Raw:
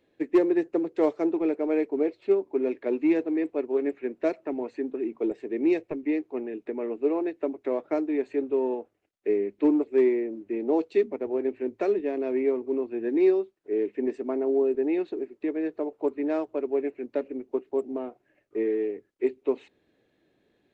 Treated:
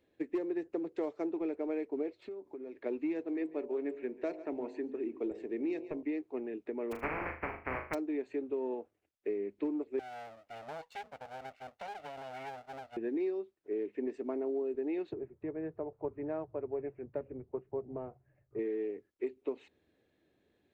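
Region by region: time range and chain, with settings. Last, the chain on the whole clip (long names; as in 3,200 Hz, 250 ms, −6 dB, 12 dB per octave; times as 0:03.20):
0:02.19–0:02.76: parametric band 2,700 Hz −5 dB 0.36 octaves + downward compressor, threshold −36 dBFS + one half of a high-frequency compander encoder only
0:03.26–0:06.03: hum removal 52.4 Hz, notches 20 + single-tap delay 141 ms −20 dB
0:06.91–0:07.93: compressing power law on the bin magnitudes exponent 0.18 + elliptic low-pass filter 2,300 Hz + flutter between parallel walls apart 6.6 metres, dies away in 0.36 s
0:09.99–0:12.97: lower of the sound and its delayed copy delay 1.4 ms + high-pass filter 1,100 Hz 6 dB per octave + downward compressor 2 to 1, threshold −36 dBFS
0:15.13–0:18.59: low-pass filter 1,400 Hz + low shelf with overshoot 190 Hz +11 dB, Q 3
whole clip: parametric band 77 Hz +10 dB 0.41 octaves; downward compressor, threshold −26 dBFS; level −5.5 dB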